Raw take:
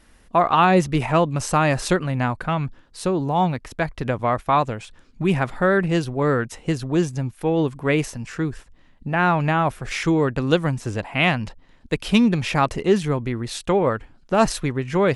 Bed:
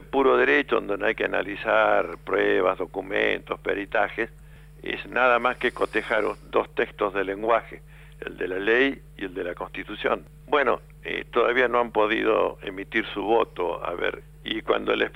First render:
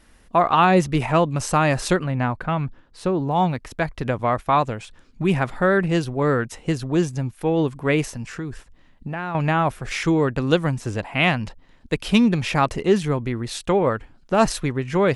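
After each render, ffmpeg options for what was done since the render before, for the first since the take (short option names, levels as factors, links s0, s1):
-filter_complex "[0:a]asettb=1/sr,asplit=3[s0][s1][s2];[s0]atrim=end=2.044[s3];[s1]atrim=start=2.04:end=3.31,asetpts=PTS-STARTPTS,afade=t=in:d=0.004:c=qsin,afade=t=out:st=1.266:d=0.004:c=qsin,highshelf=f=4900:g=-12[s4];[s2]atrim=start=3.306[s5];[s3][s4]acrossfade=d=0.004:c1=hsin:c2=qsin[s6];[s6][s5]acrossfade=d=0.004:c1=qsin:c2=hsin,asettb=1/sr,asplit=3[s7][s8][s9];[s7]atrim=end=8.244[s10];[s8]atrim=start=8.24:end=9.35,asetpts=PTS-STARTPTS,afade=t=in:d=0.004:c=qsin,afade=t=out:st=1.106:d=0.004:c=qsin,acompressor=threshold=0.0562:ratio=6:attack=3.2:release=140:knee=1:detection=peak[s11];[s9]atrim=start=9.346[s12];[s10][s11]acrossfade=d=0.004:c1=hsin:c2=qsin[s13];[s13][s12]acrossfade=d=0.004:c1=qsin:c2=hsin"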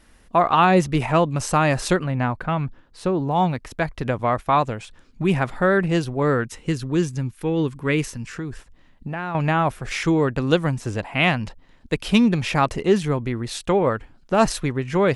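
-filter_complex "[0:a]asettb=1/sr,asplit=3[s0][s1][s2];[s0]atrim=end=6.444[s3];[s1]atrim=start=6.44:end=8.35,asetpts=PTS-STARTPTS,afade=t=in:d=0.004:c=qsin,afade=t=out:st=1.906:d=0.004:c=qsin,equalizer=f=690:t=o:w=0.64:g=-10.5[s4];[s2]atrim=start=8.346[s5];[s3][s4]acrossfade=d=0.004:c1=hsin:c2=qsin[s6];[s6][s5]acrossfade=d=0.004:c1=qsin:c2=hsin"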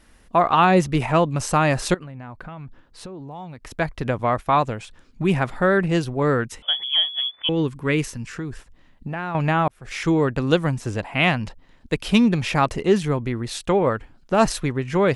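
-filter_complex "[0:a]asettb=1/sr,asplit=3[s0][s1][s2];[s0]atrim=end=1.944[s3];[s1]atrim=start=1.94:end=3.67,asetpts=PTS-STARTPTS,afade=t=in:d=0.004:c=qsin,afade=t=out:st=1.726:d=0.004:c=qsin,acompressor=threshold=0.0224:ratio=8:attack=3.2:release=140:knee=1:detection=peak[s4];[s2]atrim=start=3.666[s5];[s3][s4]acrossfade=d=0.004:c1=hsin:c2=qsin[s6];[s6][s5]acrossfade=d=0.004:c1=qsin:c2=hsin,asettb=1/sr,asplit=3[s7][s8][s9];[s7]atrim=end=6.624[s10];[s8]atrim=start=6.62:end=7.49,asetpts=PTS-STARTPTS,afade=t=in:d=0.004:c=qsin,afade=t=out:st=0.866:d=0.004:c=qsin,lowpass=f=3000:t=q:w=0.5098,lowpass=f=3000:t=q:w=0.6013,lowpass=f=3000:t=q:w=0.9,lowpass=f=3000:t=q:w=2.563,afreqshift=-3500[s11];[s9]atrim=start=7.486[s12];[s10][s11]acrossfade=d=0.004:c1=hsin:c2=qsin[s13];[s13][s12]acrossfade=d=0.004:c1=qsin:c2=hsin,asplit=2[s14][s15];[s14]atrim=end=9.68,asetpts=PTS-STARTPTS,afade=t=out:st=9.676:d=0.004:c=hsin[s16];[s15]atrim=start=9.68,asetpts=PTS-STARTPTS,afade=t=in:d=0.43[s17];[s16][s17]concat=n=2:v=0:a=1"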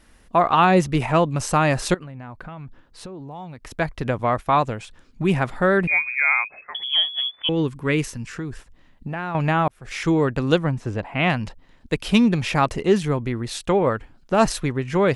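-filter_complex "[0:a]asettb=1/sr,asplit=3[s0][s1][s2];[s0]atrim=end=5.874[s3];[s1]atrim=start=5.87:end=6.75,asetpts=PTS-STARTPTS,afade=t=in:d=0.004:c=qsin,afade=t=out:st=0.876:d=0.004:c=qsin,lowpass=f=2200:t=q:w=0.5098,lowpass=f=2200:t=q:w=0.6013,lowpass=f=2200:t=q:w=0.9,lowpass=f=2200:t=q:w=2.563,afreqshift=-2600[s4];[s2]atrim=start=6.746[s5];[s3][s4]acrossfade=d=0.004:c1=hsin:c2=qsin[s6];[s6][s5]acrossfade=d=0.004:c1=qsin:c2=hsin,asettb=1/sr,asplit=3[s7][s8][s9];[s7]atrim=end=10.584[s10];[s8]atrim=start=10.58:end=11.3,asetpts=PTS-STARTPTS,afade=t=in:d=0.004:c=qsin,afade=t=out:st=0.716:d=0.004:c=qsin,lowpass=f=2100:p=1[s11];[s9]atrim=start=11.296[s12];[s10][s11]acrossfade=d=0.004:c1=hsin:c2=qsin[s13];[s13][s12]acrossfade=d=0.004:c1=qsin:c2=hsin"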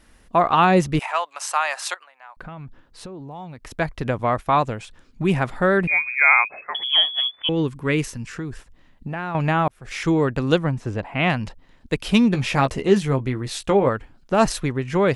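-filter_complex "[0:a]asettb=1/sr,asplit=3[s0][s1][s2];[s0]atrim=end=0.994[s3];[s1]atrim=start=0.99:end=2.37,asetpts=PTS-STARTPTS,afade=t=in:d=0.004:c=qsin,afade=t=out:st=1.376:d=0.004:c=qsin,highpass=f=780:w=0.5412,highpass=f=780:w=1.3066[s4];[s2]atrim=start=2.366[s5];[s3][s4]acrossfade=d=0.004:c1=hsin:c2=qsin[s6];[s6][s5]acrossfade=d=0.004:c1=qsin:c2=hsin,asplit=3[s7][s8][s9];[s7]afade=t=out:st=6.2:d=0.02[s10];[s8]equalizer=f=630:w=0.32:g=8.5,afade=t=in:st=6.2:d=0.02,afade=t=out:st=7.27:d=0.02[s11];[s9]afade=t=in:st=7.27:d=0.02[s12];[s10][s11][s12]amix=inputs=3:normalize=0,asettb=1/sr,asplit=3[s13][s14][s15];[s13]atrim=end=12.334[s16];[s14]atrim=start=12.33:end=13.89,asetpts=PTS-STARTPTS,afade=t=in:d=0.004:c=qsin,afade=t=out:st=1.556:d=0.004:c=qsin,asplit=2[s17][s18];[s18]adelay=15,volume=0.422[s19];[s17][s19]amix=inputs=2:normalize=0,atrim=end_sample=68796[s20];[s15]atrim=start=13.886[s21];[s16][s20]acrossfade=d=0.004:c1=hsin:c2=qsin[s22];[s22][s21]acrossfade=d=0.004:c1=qsin:c2=hsin"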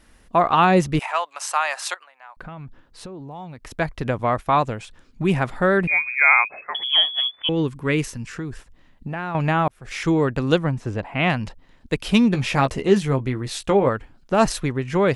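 -af anull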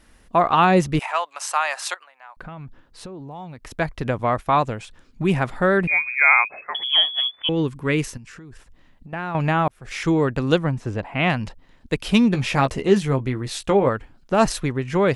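-filter_complex "[0:a]asettb=1/sr,asplit=3[s0][s1][s2];[s0]atrim=end=8.174[s3];[s1]atrim=start=8.17:end=9.13,asetpts=PTS-STARTPTS,afade=t=in:d=0.004:c=qsin,afade=t=out:st=0.956:d=0.004:c=qsin,acompressor=threshold=0.0112:ratio=5:attack=3.2:release=140:knee=1:detection=peak[s4];[s2]atrim=start=9.126[s5];[s3][s4]acrossfade=d=0.004:c1=hsin:c2=qsin[s6];[s6][s5]acrossfade=d=0.004:c1=qsin:c2=hsin"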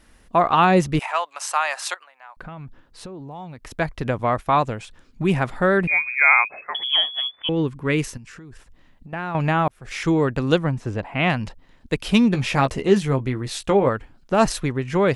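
-filter_complex "[0:a]asettb=1/sr,asplit=3[s0][s1][s2];[s0]atrim=end=6.964[s3];[s1]atrim=start=6.96:end=7.9,asetpts=PTS-STARTPTS,afade=t=in:d=0.004:c=qsin,afade=t=out:st=0.936:d=0.004:c=qsin,highshelf=f=4300:g=-8[s4];[s2]atrim=start=7.896[s5];[s3][s4]acrossfade=d=0.004:c1=hsin:c2=qsin[s6];[s6][s5]acrossfade=d=0.004:c1=qsin:c2=hsin"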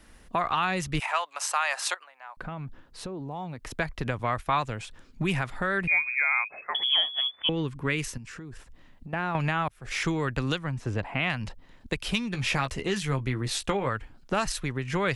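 -filter_complex "[0:a]acrossover=split=110|1200|5300[s0][s1][s2][s3];[s1]acompressor=threshold=0.0398:ratio=6[s4];[s0][s4][s2][s3]amix=inputs=4:normalize=0,alimiter=limit=0.188:level=0:latency=1:release=461"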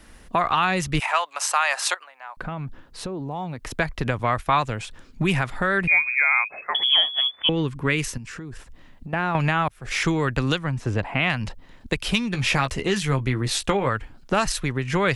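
-af "volume=1.88"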